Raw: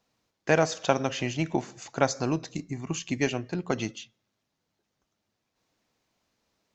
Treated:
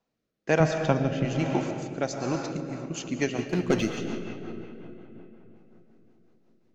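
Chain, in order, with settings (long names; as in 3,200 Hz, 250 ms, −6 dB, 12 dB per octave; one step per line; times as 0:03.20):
0:00.60–0:01.25: bass and treble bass +14 dB, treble −9 dB
0:03.38–0:03.93: leveller curve on the samples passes 2
parametric band 89 Hz −10 dB 0.59 octaves
feedback echo with a low-pass in the loop 148 ms, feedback 84%, low-pass 3,100 Hz, level −23 dB
on a send at −4.5 dB: convolution reverb RT60 3.8 s, pre-delay 75 ms
on the sum: rotating-speaker cabinet horn 1.1 Hz, later 5.5 Hz, at 0:02.21
one half of a high-frequency compander decoder only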